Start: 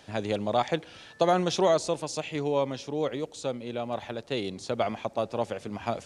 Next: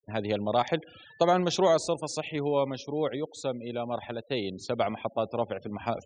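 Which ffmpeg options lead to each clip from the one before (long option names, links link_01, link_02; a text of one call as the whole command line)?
ffmpeg -i in.wav -af "afftfilt=real='re*gte(hypot(re,im),0.00794)':imag='im*gte(hypot(re,im),0.00794)':win_size=1024:overlap=0.75" out.wav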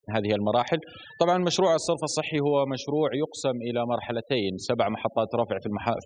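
ffmpeg -i in.wav -af "acompressor=threshold=-27dB:ratio=2.5,volume=6.5dB" out.wav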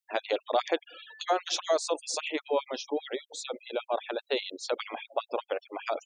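ffmpeg -i in.wav -af "afftfilt=real='re*gte(b*sr/1024,250*pow(2400/250,0.5+0.5*sin(2*PI*5*pts/sr)))':imag='im*gte(b*sr/1024,250*pow(2400/250,0.5+0.5*sin(2*PI*5*pts/sr)))':win_size=1024:overlap=0.75,volume=-2dB" out.wav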